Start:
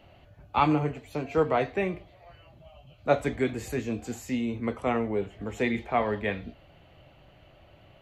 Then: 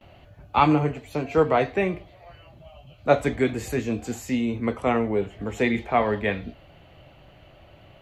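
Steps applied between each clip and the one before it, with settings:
noise gate with hold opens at −50 dBFS
level +4.5 dB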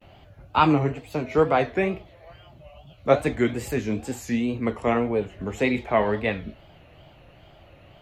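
tape wow and flutter 130 cents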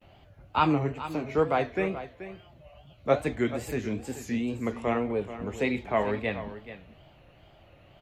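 single-tap delay 431 ms −13 dB
level −5 dB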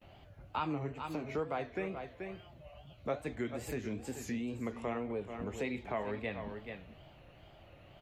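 downward compressor 2.5 to 1, threshold −36 dBFS, peak gain reduction 13 dB
level −1.5 dB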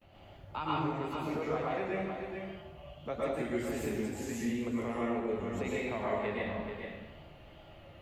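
dense smooth reverb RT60 1 s, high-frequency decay 0.85×, pre-delay 100 ms, DRR −6 dB
level −3 dB

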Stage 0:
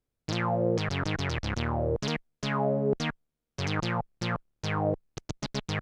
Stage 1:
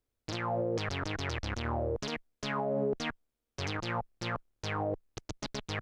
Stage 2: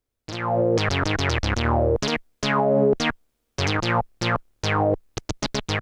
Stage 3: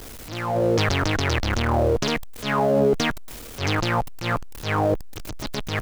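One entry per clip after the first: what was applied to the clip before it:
parametric band 160 Hz −12.5 dB 0.44 octaves; brickwall limiter −23 dBFS, peak gain reduction 7.5 dB
automatic gain control gain up to 10.5 dB; level +2 dB
converter with a step at zero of −32 dBFS; transient designer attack −10 dB, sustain +5 dB

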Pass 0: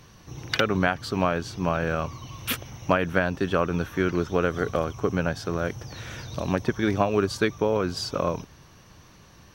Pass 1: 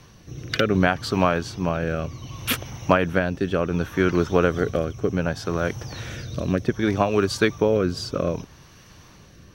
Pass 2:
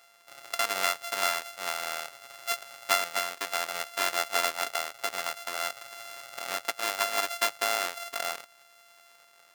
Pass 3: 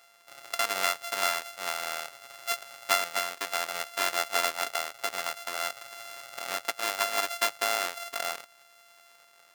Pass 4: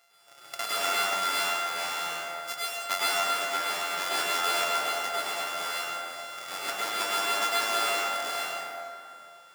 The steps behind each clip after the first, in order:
rotating-speaker cabinet horn 0.65 Hz; level +5 dB
samples sorted by size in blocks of 64 samples; high-pass filter 1,000 Hz 12 dB per octave; level −3.5 dB
no processing that can be heard
dense smooth reverb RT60 2.5 s, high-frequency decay 0.55×, pre-delay 90 ms, DRR −8 dB; level −6 dB

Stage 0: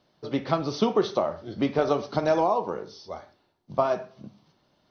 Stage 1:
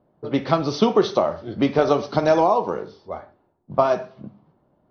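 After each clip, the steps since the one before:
low-pass that shuts in the quiet parts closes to 810 Hz, open at −23.5 dBFS
level +5.5 dB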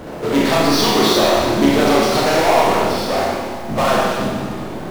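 harmonic and percussive parts rebalanced harmonic −16 dB
power curve on the samples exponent 0.35
four-comb reverb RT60 1.6 s, combs from 25 ms, DRR −4.5 dB
level −5.5 dB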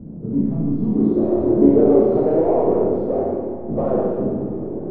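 low-pass filter sweep 200 Hz → 430 Hz, 0:00.79–0:01.60
level −3 dB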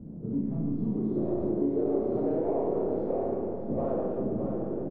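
downward compressor, threshold −18 dBFS, peak gain reduction 10.5 dB
single-tap delay 618 ms −6 dB
level −7.5 dB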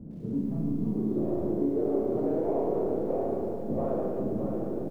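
feedback echo at a low word length 106 ms, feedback 55%, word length 9 bits, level −14.5 dB

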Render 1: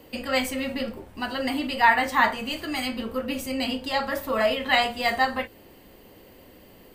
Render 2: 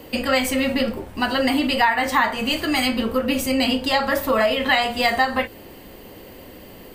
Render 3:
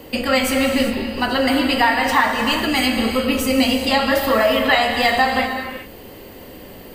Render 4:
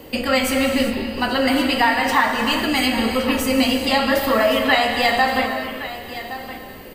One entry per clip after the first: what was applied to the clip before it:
downward compressor 6 to 1, threshold −24 dBFS, peak gain reduction 11 dB; level +9 dB
reverb whose tail is shaped and stops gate 430 ms flat, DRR 3.5 dB; level +1.5 dB
single-tap delay 1,118 ms −13.5 dB; level −1 dB

